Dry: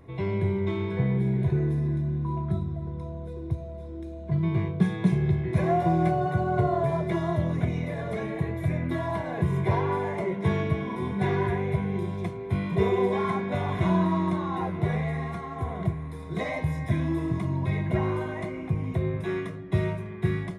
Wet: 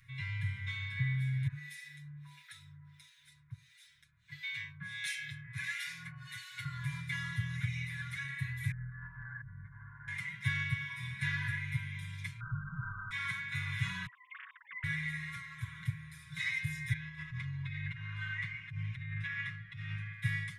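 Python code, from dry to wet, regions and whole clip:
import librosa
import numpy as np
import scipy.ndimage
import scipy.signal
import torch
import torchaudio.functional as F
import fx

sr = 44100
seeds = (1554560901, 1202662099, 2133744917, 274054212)

y = fx.chain(x, sr, fx.tilt_shelf(db=-9.5, hz=890.0),
    fx.harmonic_tremolo(hz=1.5, depth_pct=100, crossover_hz=1300.0), at=(1.47, 6.65))
y = fx.chain(y, sr, fx.ellip_lowpass(hz=1600.0, order=4, stop_db=40),
    fx.over_compress(threshold_db=-32.0, ratio=-1.0),
    fx.ring_mod(carrier_hz=42.0), at=(8.71, 10.08))
y = fx.chain(y, sr, fx.comb(ms=6.3, depth=0.35),
    fx.quant_companded(bits=2),
    fx.brickwall_lowpass(high_hz=1600.0), at=(12.4, 13.11))
y = fx.chain(y, sr, fx.sine_speech(),
    fx.bandpass_edges(low_hz=600.0, high_hz=2400.0),
    fx.over_compress(threshold_db=-40.0, ratio=-1.0), at=(14.06, 14.84))
y = fx.chain(y, sr, fx.lowpass(hz=3500.0, slope=12),
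    fx.over_compress(threshold_db=-30.0, ratio=-1.0), at=(16.93, 20.13))
y = scipy.signal.sosfilt(scipy.signal.ellip(3, 1.0, 50, [120.0, 1700.0], 'bandstop', fs=sr, output='sos'), y)
y = fx.low_shelf(y, sr, hz=230.0, db=-11.0)
y = y + 0.93 * np.pad(y, (int(7.1 * sr / 1000.0), 0))[:len(y)]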